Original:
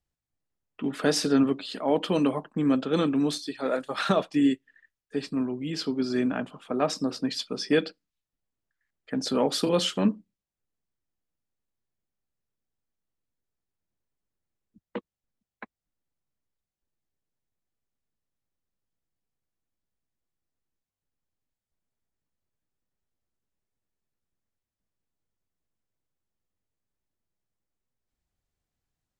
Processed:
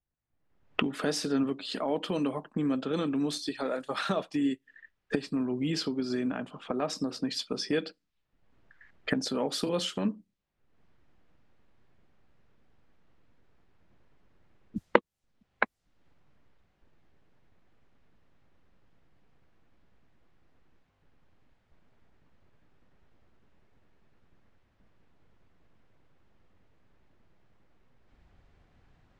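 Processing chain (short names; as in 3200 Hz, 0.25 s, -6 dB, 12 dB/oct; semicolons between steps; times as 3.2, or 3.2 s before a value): recorder AGC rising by 40 dB/s; low-pass opened by the level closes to 2200 Hz, open at -24 dBFS; gain -6.5 dB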